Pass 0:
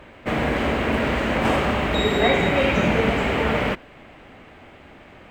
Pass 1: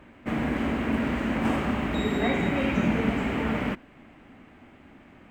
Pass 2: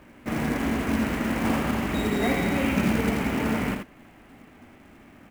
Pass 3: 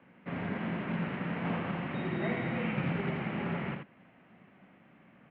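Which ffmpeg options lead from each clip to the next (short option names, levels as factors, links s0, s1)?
-af "equalizer=f=250:t=o:w=1:g=8,equalizer=f=500:t=o:w=1:g=-5,equalizer=f=4000:t=o:w=1:g=-5,volume=0.447"
-af "acrusher=bits=4:mode=log:mix=0:aa=0.000001,aecho=1:1:81:0.531"
-af "highpass=f=170:t=q:w=0.5412,highpass=f=170:t=q:w=1.307,lowpass=f=3300:t=q:w=0.5176,lowpass=f=3300:t=q:w=0.7071,lowpass=f=3300:t=q:w=1.932,afreqshift=-53,volume=0.398"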